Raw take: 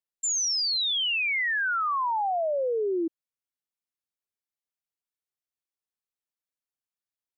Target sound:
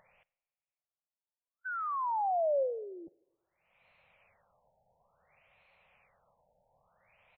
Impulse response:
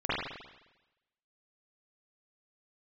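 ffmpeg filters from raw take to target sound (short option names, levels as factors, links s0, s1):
-filter_complex "[0:a]firequalizer=gain_entry='entry(170,0);entry(310,-23);entry(540,6);entry(1600,-5);entry(2400,8);entry(3400,-12)':delay=0.05:min_phase=1,acompressor=mode=upward:threshold=0.0398:ratio=2.5,asplit=2[s0][s1];[1:a]atrim=start_sample=2205[s2];[s1][s2]afir=irnorm=-1:irlink=0,volume=0.02[s3];[s0][s3]amix=inputs=2:normalize=0,afftfilt=real='re*lt(b*sr/1024,900*pow(4400/900,0.5+0.5*sin(2*PI*0.57*pts/sr)))':imag='im*lt(b*sr/1024,900*pow(4400/900,0.5+0.5*sin(2*PI*0.57*pts/sr)))':win_size=1024:overlap=0.75,volume=0.422"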